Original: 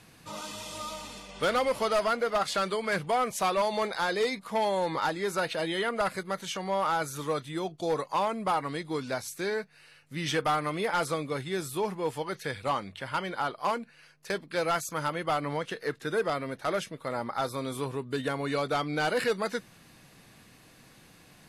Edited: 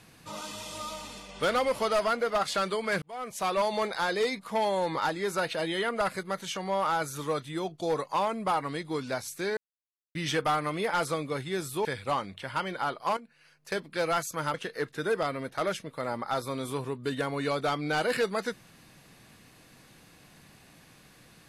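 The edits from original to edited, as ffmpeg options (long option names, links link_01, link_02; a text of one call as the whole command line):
ffmpeg -i in.wav -filter_complex "[0:a]asplit=7[link_01][link_02][link_03][link_04][link_05][link_06][link_07];[link_01]atrim=end=3.02,asetpts=PTS-STARTPTS,afade=type=out:start_time=3.016:duration=0.004:curve=hsin[link_08];[link_02]atrim=start=3.02:end=9.57,asetpts=PTS-STARTPTS,afade=type=in:duration=0.57,afade=type=out:start_time=6.546:duration=0.004:curve=hsin[link_09];[link_03]atrim=start=9.57:end=10.15,asetpts=PTS-STARTPTS,volume=0[link_10];[link_04]atrim=start=10.15:end=11.852,asetpts=PTS-STARTPTS,afade=type=in:duration=0.004:curve=hsin[link_11];[link_05]atrim=start=12.428:end=13.75,asetpts=PTS-STARTPTS,afade=type=out:start_time=1.318:duration=0.004:curve=hsin:silence=0.251189[link_12];[link_06]atrim=start=13.75:end=15.122,asetpts=PTS-STARTPTS,afade=type=in:duration=0.57:silence=0.251189[link_13];[link_07]atrim=start=15.608[link_14];[link_08][link_09][link_10][link_11]concat=n=4:v=0:a=1[link_15];[link_12][link_13]concat=n=2:v=0:a=1[link_16];[link_15][link_16]acrossfade=duration=0.004:curve1=hsin:curve2=hsin[link_17];[link_17][link_14]acrossfade=duration=0.004:curve1=hsin:curve2=hsin" out.wav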